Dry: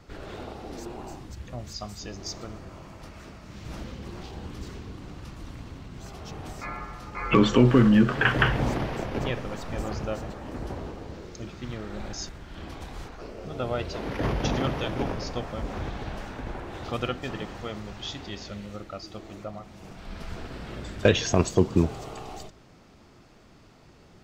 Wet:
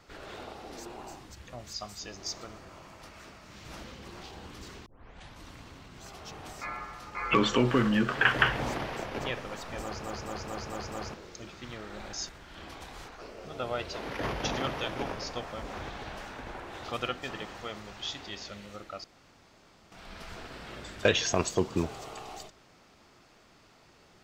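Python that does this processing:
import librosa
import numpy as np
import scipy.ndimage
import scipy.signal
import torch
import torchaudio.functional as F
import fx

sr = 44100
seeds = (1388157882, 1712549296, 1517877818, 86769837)

y = fx.edit(x, sr, fx.tape_start(start_s=4.86, length_s=0.57),
    fx.stutter_over(start_s=9.82, slice_s=0.22, count=6),
    fx.room_tone_fill(start_s=19.04, length_s=0.88), tone=tone)
y = fx.low_shelf(y, sr, hz=420.0, db=-11.0)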